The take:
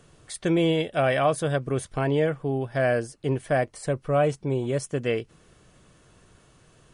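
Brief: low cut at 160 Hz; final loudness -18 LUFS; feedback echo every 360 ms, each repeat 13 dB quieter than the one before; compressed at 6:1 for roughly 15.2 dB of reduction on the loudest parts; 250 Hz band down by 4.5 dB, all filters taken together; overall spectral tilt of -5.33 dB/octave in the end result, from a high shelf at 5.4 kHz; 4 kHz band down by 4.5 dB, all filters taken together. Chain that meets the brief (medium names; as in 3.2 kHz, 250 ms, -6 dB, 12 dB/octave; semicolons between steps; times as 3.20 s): high-pass 160 Hz; peaking EQ 250 Hz -5.5 dB; peaking EQ 4 kHz -4.5 dB; treble shelf 5.4 kHz -5 dB; compression 6:1, threshold -35 dBFS; feedback delay 360 ms, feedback 22%, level -13 dB; trim +21 dB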